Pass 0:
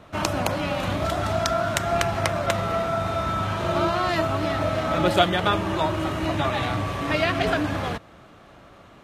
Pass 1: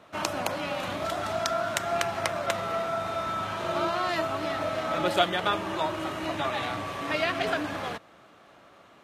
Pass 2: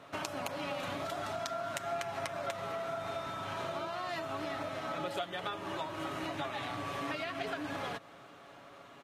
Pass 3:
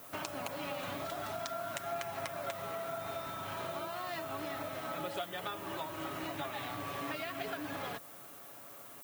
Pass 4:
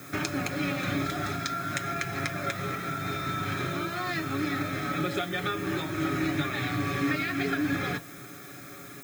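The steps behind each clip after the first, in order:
high-pass 350 Hz 6 dB/octave; trim -3.5 dB
compression 10:1, threshold -35 dBFS, peak gain reduction 18 dB; comb 7.2 ms, depth 40%
added noise violet -51 dBFS; trim -2 dB
reverberation RT60 0.25 s, pre-delay 3 ms, DRR 10 dB; trim +2.5 dB

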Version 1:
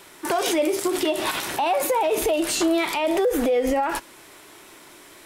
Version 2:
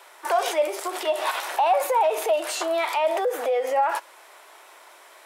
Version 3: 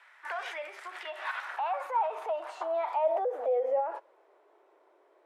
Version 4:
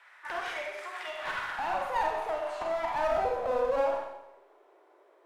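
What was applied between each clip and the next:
high-pass 600 Hz 24 dB/octave; tilt shelf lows +6 dB, about 1.5 kHz
band-pass sweep 1.8 kHz -> 390 Hz, 1.06–4.40 s; trim -2.5 dB
one-sided clip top -34.5 dBFS; Schroeder reverb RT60 0.85 s, combs from 31 ms, DRR 0 dB

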